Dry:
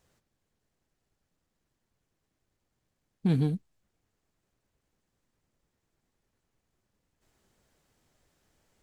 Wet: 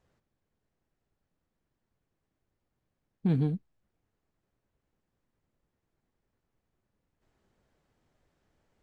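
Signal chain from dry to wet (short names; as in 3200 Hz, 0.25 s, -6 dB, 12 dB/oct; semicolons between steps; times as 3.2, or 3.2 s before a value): LPF 2000 Hz 6 dB/oct; gain -1 dB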